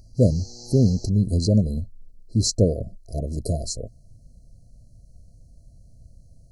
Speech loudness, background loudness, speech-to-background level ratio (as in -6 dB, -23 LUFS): -23.0 LUFS, -41.5 LUFS, 18.5 dB